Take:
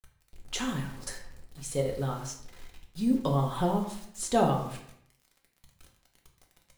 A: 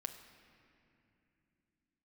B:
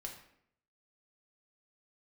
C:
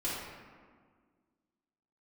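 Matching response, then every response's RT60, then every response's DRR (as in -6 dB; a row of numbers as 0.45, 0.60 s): B; 2.8, 0.70, 1.7 s; 6.0, 0.5, -10.0 dB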